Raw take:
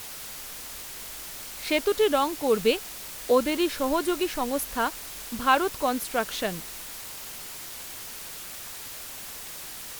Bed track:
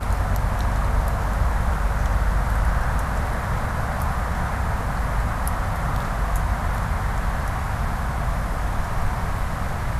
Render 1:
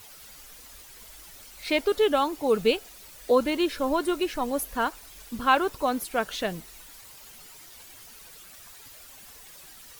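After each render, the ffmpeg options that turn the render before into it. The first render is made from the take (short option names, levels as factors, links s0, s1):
-af "afftdn=nr=11:nf=-40"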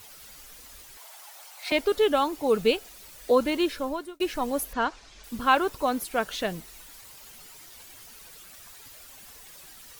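-filter_complex "[0:a]asettb=1/sr,asplit=3[s0][s1][s2];[s0]atrim=end=0.974[s3];[s1]atrim=start=0.97:end=1.72,asetpts=PTS-STARTPTS,afade=t=in:d=0.004:c=qsin,afade=t=out:st=0.746:d=0.004:c=qsin,highpass=f=770:t=q:w=3[s4];[s2]atrim=start=1.716[s5];[s3][s4]acrossfade=d=0.004:c1=hsin:c2=qsin[s6];[s6][s5]acrossfade=d=0.004:c1=qsin:c2=hsin,asettb=1/sr,asplit=3[s7][s8][s9];[s7]atrim=end=4.734[s10];[s8]atrim=start=4.73:end=5.24,asetpts=PTS-STARTPTS,afade=t=in:d=0.004:c=qsin,afade=t=out:st=0.506:d=0.004:c=qsin,lowpass=f=6400:w=0.5412,lowpass=f=6400:w=1.3066[s11];[s9]atrim=start=5.236[s12];[s10][s11]acrossfade=d=0.004:c1=hsin:c2=qsin[s13];[s13][s12]acrossfade=d=0.004:c1=qsin:c2=hsin,asplit=2[s14][s15];[s14]atrim=end=4.2,asetpts=PTS-STARTPTS,afade=t=out:st=3.66:d=0.54[s16];[s15]atrim=start=4.2,asetpts=PTS-STARTPTS,afade=t=in:d=0.004:c=hsin[s17];[s16][s17]concat=n=2:v=0:a=1"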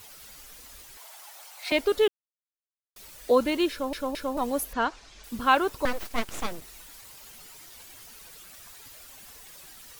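-filter_complex "[0:a]asettb=1/sr,asplit=3[s0][s1][s2];[s0]atrim=end=5.854[s3];[s1]atrim=start=5.85:end=6.62,asetpts=PTS-STARTPTS,afade=t=in:d=0.004:c=qsin,afade=t=out:st=0.766:d=0.004:c=qsin,aeval=exprs='abs(val(0))':c=same[s4];[s2]atrim=start=6.616[s5];[s3][s4]acrossfade=d=0.004:c1=hsin:c2=qsin[s6];[s6][s5]acrossfade=d=0.004:c1=qsin:c2=hsin,asplit=6[s7][s8][s9][s10][s11][s12];[s7]atrim=end=2.08,asetpts=PTS-STARTPTS,afade=t=out:st=2.076:d=0.004:c=hsin[s13];[s8]atrim=start=2.08:end=2.96,asetpts=PTS-STARTPTS,volume=0[s14];[s9]atrim=start=2.96:end=3.932,asetpts=PTS-STARTPTS,afade=t=in:d=0.004:c=hsin[s15];[s10]atrim=start=3.708:end=3.932[s16];[s11]atrim=start=3.708:end=3.932[s17];[s12]atrim=start=4.368[s18];[s13][s14][s15]concat=n=3:v=0:a=1[s19];[s19][s16]acrossfade=d=0.004:c1=hsin:c2=hsin[s20];[s20][s17]acrossfade=d=0.004:c1=hsin:c2=hsin[s21];[s21][s18]acrossfade=d=0.004:c1=hsin:c2=hsin"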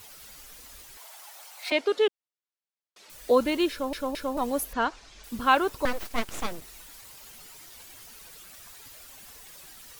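-filter_complex "[0:a]asettb=1/sr,asplit=3[s0][s1][s2];[s0]atrim=end=1.704[s3];[s1]atrim=start=1.7:end=3.1,asetpts=PTS-STARTPTS,afade=t=in:d=0.004:c=qsin,afade=t=out:st=1.396:d=0.004:c=qsin,highpass=300,lowpass=5900[s4];[s2]atrim=start=3.096[s5];[s3][s4]acrossfade=d=0.004:c1=hsin:c2=qsin[s6];[s6][s5]acrossfade=d=0.004:c1=qsin:c2=hsin"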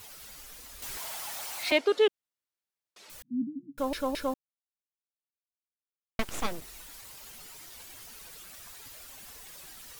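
-filter_complex "[0:a]asettb=1/sr,asplit=3[s0][s1][s2];[s0]atrim=end=0.824[s3];[s1]atrim=start=0.82:end=1.78,asetpts=PTS-STARTPTS,afade=t=in:d=0.004:c=qsin,afade=t=out:st=0.956:d=0.004:c=qsin,aeval=exprs='val(0)+0.5*0.0158*sgn(val(0))':c=same[s4];[s2]atrim=start=1.776[s5];[s3][s4]acrossfade=d=0.004:c1=hsin:c2=qsin[s6];[s6][s5]acrossfade=d=0.004:c1=qsin:c2=hsin,asettb=1/sr,asplit=3[s7][s8][s9];[s7]atrim=end=3.224[s10];[s8]atrim=start=3.22:end=3.78,asetpts=PTS-STARTPTS,afade=t=in:d=0.004:c=qsin,afade=t=out:st=0.556:d=0.004:c=qsin,asuperpass=centerf=190:order=20:qfactor=1.2[s11];[s9]atrim=start=3.776[s12];[s10][s11]acrossfade=d=0.004:c1=hsin:c2=qsin[s13];[s13][s12]acrossfade=d=0.004:c1=qsin:c2=hsin,asplit=3[s14][s15][s16];[s14]atrim=end=4.34,asetpts=PTS-STARTPTS,afade=t=out:st=4.336:d=0.004:c=hsin[s17];[s15]atrim=start=4.34:end=6.19,asetpts=PTS-STARTPTS,volume=0[s18];[s16]atrim=start=6.19,asetpts=PTS-STARTPTS,afade=t=in:d=0.004:c=hsin[s19];[s17][s18][s19]concat=n=3:v=0:a=1"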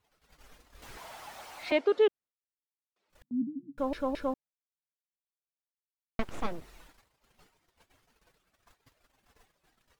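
-af "lowpass=f=1300:p=1,agate=range=0.0891:threshold=0.002:ratio=16:detection=peak"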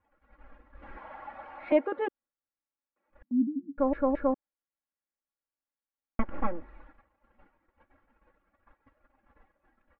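-af "lowpass=f=1900:w=0.5412,lowpass=f=1900:w=1.3066,aecho=1:1:3.6:0.96"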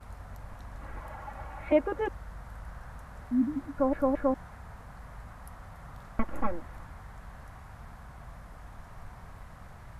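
-filter_complex "[1:a]volume=0.075[s0];[0:a][s0]amix=inputs=2:normalize=0"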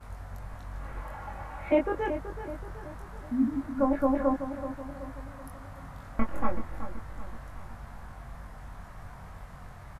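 -filter_complex "[0:a]asplit=2[s0][s1];[s1]adelay=22,volume=0.668[s2];[s0][s2]amix=inputs=2:normalize=0,asplit=2[s3][s4];[s4]adelay=378,lowpass=f=2000:p=1,volume=0.316,asplit=2[s5][s6];[s6]adelay=378,lowpass=f=2000:p=1,volume=0.51,asplit=2[s7][s8];[s8]adelay=378,lowpass=f=2000:p=1,volume=0.51,asplit=2[s9][s10];[s10]adelay=378,lowpass=f=2000:p=1,volume=0.51,asplit=2[s11][s12];[s12]adelay=378,lowpass=f=2000:p=1,volume=0.51,asplit=2[s13][s14];[s14]adelay=378,lowpass=f=2000:p=1,volume=0.51[s15];[s3][s5][s7][s9][s11][s13][s15]amix=inputs=7:normalize=0"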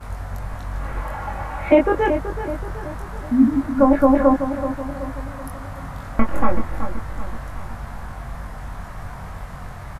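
-af "volume=3.76,alimiter=limit=0.708:level=0:latency=1"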